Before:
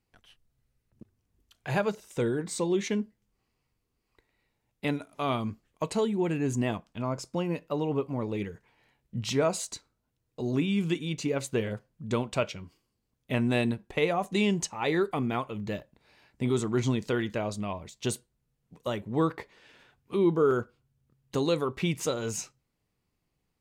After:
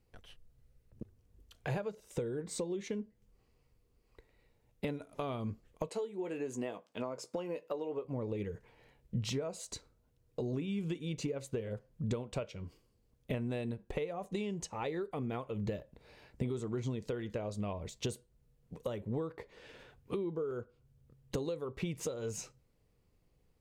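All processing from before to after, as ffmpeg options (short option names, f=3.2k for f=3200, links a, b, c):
-filter_complex "[0:a]asettb=1/sr,asplit=3[a][b][c];[a]atrim=end=5.894[d];[b]atrim=start=5.89:end=8.05,asetpts=PTS-STARTPTS,afade=t=in:d=0.004:c=qsin,afade=t=out:st=2.156:d=0.004:c=qsin,highpass=340,asplit=2[e][f];[f]adelay=16,volume=-10.5dB[g];[e][g]amix=inputs=2:normalize=0,atrim=end_sample=95256[h];[c]atrim=start=8.046[i];[d][h]acrossfade=d=0.004:c1=hsin:c2=qsin[j];[j][i]acrossfade=d=0.004:c1=qsin:c2=hsin,equalizer=f=490:t=o:w=0.68:g=9,acompressor=threshold=-36dB:ratio=10,lowshelf=f=120:g=12"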